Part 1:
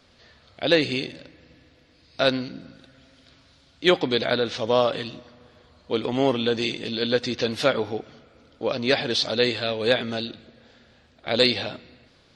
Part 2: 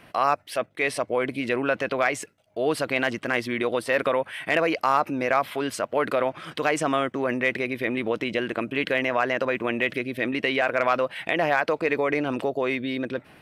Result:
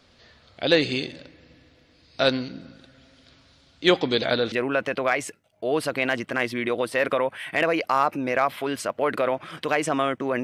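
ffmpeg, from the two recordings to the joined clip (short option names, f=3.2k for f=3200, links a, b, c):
-filter_complex "[0:a]apad=whole_dur=10.43,atrim=end=10.43,atrim=end=4.522[a];[1:a]atrim=start=1.458:end=7.37[b];[a][b]acrossfade=d=0.004:c1=hsin:c2=hsin"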